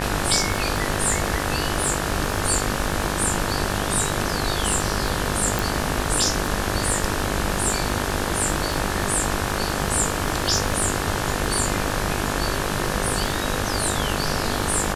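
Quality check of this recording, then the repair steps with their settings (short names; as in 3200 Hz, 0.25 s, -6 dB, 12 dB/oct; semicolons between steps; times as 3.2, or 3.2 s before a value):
buzz 50 Hz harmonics 36 -28 dBFS
crackle 26/s -26 dBFS
5.59 pop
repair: de-click; de-hum 50 Hz, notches 36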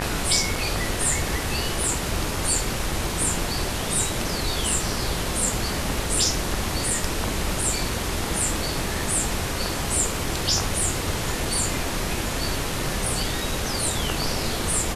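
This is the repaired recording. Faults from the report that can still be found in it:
none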